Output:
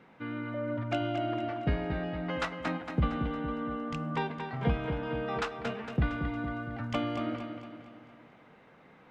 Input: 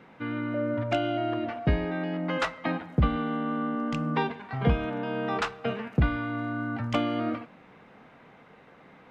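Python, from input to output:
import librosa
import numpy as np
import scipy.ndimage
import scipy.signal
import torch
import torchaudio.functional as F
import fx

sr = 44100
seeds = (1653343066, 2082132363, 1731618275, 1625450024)

y = fx.echo_feedback(x, sr, ms=229, feedback_pct=49, wet_db=-7.5)
y = y * 10.0 ** (-5.0 / 20.0)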